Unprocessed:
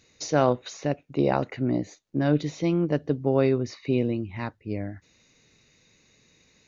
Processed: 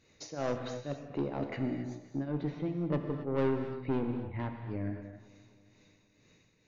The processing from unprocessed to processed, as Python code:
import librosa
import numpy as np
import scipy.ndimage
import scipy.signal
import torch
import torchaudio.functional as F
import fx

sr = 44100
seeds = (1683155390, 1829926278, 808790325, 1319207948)

y = fx.high_shelf(x, sr, hz=3300.0, db=-9.0)
y = fx.tremolo_shape(y, sr, shape='triangle', hz=2.1, depth_pct=95)
y = fx.air_absorb(y, sr, metres=300.0, at=(2.35, 4.61))
y = 10.0 ** (-26.0 / 20.0) * np.tanh(y / 10.0 ** (-26.0 / 20.0))
y = fx.echo_filtered(y, sr, ms=263, feedback_pct=59, hz=4600.0, wet_db=-20.0)
y = fx.rev_gated(y, sr, seeds[0], gate_ms=300, shape='flat', drr_db=5.0)